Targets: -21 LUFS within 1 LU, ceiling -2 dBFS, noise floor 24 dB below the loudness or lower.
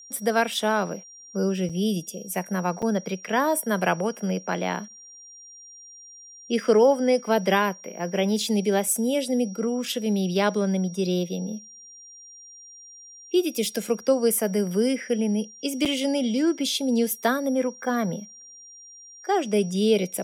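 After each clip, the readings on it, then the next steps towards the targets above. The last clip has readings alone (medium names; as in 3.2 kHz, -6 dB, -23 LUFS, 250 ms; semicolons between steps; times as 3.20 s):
dropouts 3; longest dropout 6.2 ms; steady tone 5.7 kHz; tone level -44 dBFS; loudness -24.5 LUFS; peak level -8.0 dBFS; loudness target -21.0 LUFS
-> interpolate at 1.69/2.82/15.85 s, 6.2 ms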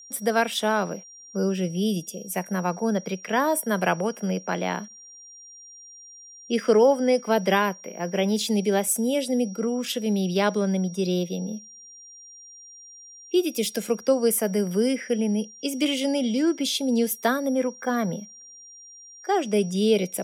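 dropouts 0; steady tone 5.7 kHz; tone level -44 dBFS
-> band-stop 5.7 kHz, Q 30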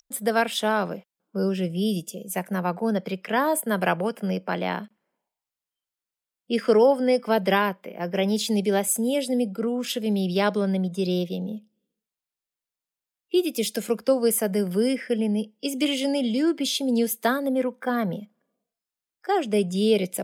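steady tone not found; loudness -24.5 LUFS; peak level -8.0 dBFS; loudness target -21.0 LUFS
-> trim +3.5 dB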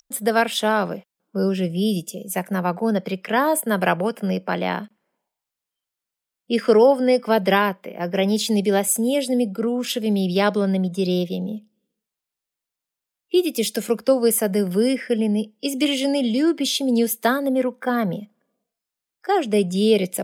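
loudness -21.0 LUFS; peak level -4.5 dBFS; noise floor -86 dBFS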